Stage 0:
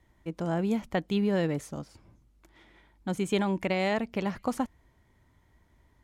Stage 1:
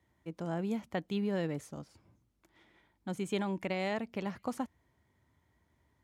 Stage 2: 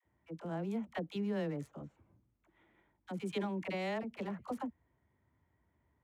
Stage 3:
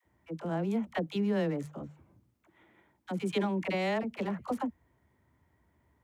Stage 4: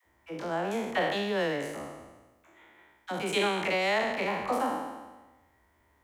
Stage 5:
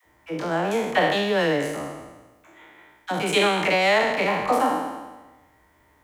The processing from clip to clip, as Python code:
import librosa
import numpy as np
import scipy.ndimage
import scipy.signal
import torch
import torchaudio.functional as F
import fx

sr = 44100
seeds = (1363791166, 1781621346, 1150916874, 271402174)

y1 = scipy.signal.sosfilt(scipy.signal.butter(4, 68.0, 'highpass', fs=sr, output='sos'), x)
y1 = F.gain(torch.from_numpy(y1), -6.5).numpy()
y2 = fx.wiener(y1, sr, points=9)
y2 = fx.dispersion(y2, sr, late='lows', ms=51.0, hz=560.0)
y2 = F.gain(torch.from_numpy(y2), -3.0).numpy()
y3 = fx.hum_notches(y2, sr, base_hz=50, count=3)
y3 = F.gain(torch.from_numpy(y3), 6.5).numpy()
y4 = fx.spec_trails(y3, sr, decay_s=1.21)
y4 = fx.peak_eq(y4, sr, hz=150.0, db=-13.5, octaves=2.3)
y4 = F.gain(torch.from_numpy(y4), 5.5).numpy()
y5 = y4 + 0.32 * np.pad(y4, (int(6.6 * sr / 1000.0), 0))[:len(y4)]
y5 = F.gain(torch.from_numpy(y5), 7.5).numpy()